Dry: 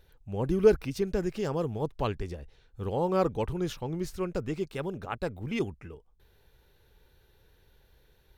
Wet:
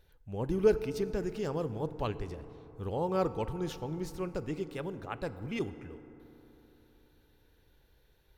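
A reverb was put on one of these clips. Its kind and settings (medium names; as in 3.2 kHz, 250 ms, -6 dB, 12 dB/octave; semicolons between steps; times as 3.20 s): FDN reverb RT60 3.7 s, high-frequency decay 0.35×, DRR 12.5 dB; trim -4 dB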